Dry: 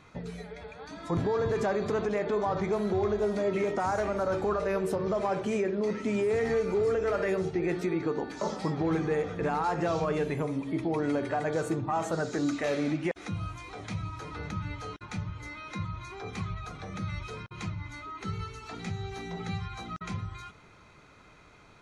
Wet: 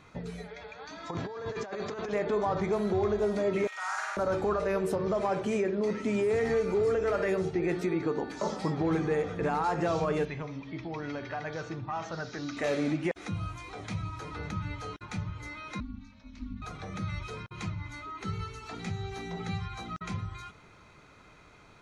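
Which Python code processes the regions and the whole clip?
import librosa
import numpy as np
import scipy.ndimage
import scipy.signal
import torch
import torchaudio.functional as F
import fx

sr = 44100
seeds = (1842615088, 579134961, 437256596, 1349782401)

y = fx.chain(x, sr, fx.low_shelf(hz=430.0, db=-10.0),
    fx.over_compress(threshold_db=-35.0, ratio=-0.5),
    fx.steep_lowpass(hz=7000.0, slope=48), at=(0.48, 2.13))
y = fx.chain(y, sr, fx.highpass(hz=1200.0, slope=24),
    fx.room_flutter(wall_m=8.6, rt60_s=1.3), at=(3.67, 4.17))
y = fx.chain(y, sr, fx.ellip_lowpass(hz=5800.0, order=4, stop_db=50),
    fx.peak_eq(hz=380.0, db=-9.0, octaves=2.4), at=(10.25, 12.57))
y = fx.chain(y, sr, fx.curve_eq(hz=(130.0, 190.0, 5400.0, 9500.0), db=(0, -28, -8, -25)),
    fx.ring_mod(carrier_hz=150.0), at=(15.8, 16.62))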